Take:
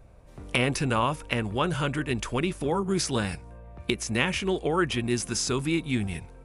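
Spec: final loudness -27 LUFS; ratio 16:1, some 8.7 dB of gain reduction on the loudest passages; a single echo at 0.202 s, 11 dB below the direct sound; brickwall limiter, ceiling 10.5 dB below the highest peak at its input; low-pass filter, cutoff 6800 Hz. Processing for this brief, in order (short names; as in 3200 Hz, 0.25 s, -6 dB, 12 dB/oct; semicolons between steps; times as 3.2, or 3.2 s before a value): LPF 6800 Hz; compressor 16:1, threshold -28 dBFS; limiter -24.5 dBFS; echo 0.202 s -11 dB; gain +8 dB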